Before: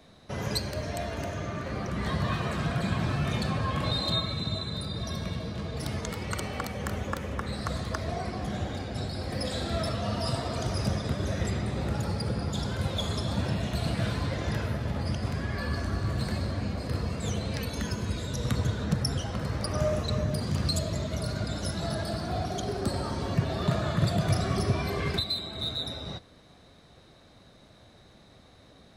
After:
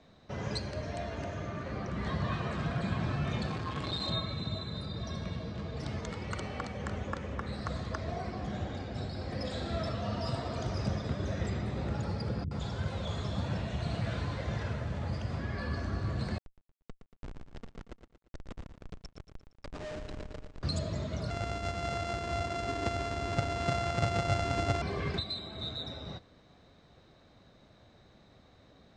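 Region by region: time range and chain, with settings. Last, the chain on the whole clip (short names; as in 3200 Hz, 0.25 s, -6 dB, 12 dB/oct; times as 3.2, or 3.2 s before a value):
3.48–4.07 high shelf 3900 Hz +9.5 dB + notch 550 Hz, Q 5 + core saturation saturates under 730 Hz
12.44–15.39 delta modulation 64 kbps, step -45 dBFS + notch 5100 Hz, Q 29 + bands offset in time lows, highs 70 ms, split 290 Hz
16.38–20.63 HPF 310 Hz 24 dB/oct + Schmitt trigger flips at -28.5 dBFS + lo-fi delay 0.116 s, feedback 55%, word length 10-bit, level -8.5 dB
21.3–24.82 sample sorter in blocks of 64 samples + comb 2.9 ms, depth 41%
whole clip: steep low-pass 8100 Hz 36 dB/oct; high shelf 4700 Hz -7.5 dB; gain -4 dB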